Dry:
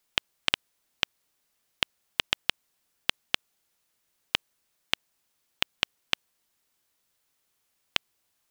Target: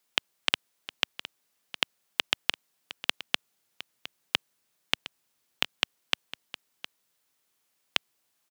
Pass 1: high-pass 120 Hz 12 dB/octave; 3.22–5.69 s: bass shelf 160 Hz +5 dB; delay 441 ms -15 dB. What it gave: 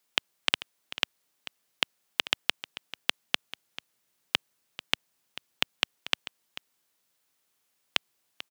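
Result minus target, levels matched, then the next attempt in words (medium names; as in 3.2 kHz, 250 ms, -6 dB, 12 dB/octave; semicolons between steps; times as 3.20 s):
echo 270 ms early
high-pass 120 Hz 12 dB/octave; 3.22–5.69 s: bass shelf 160 Hz +5 dB; delay 711 ms -15 dB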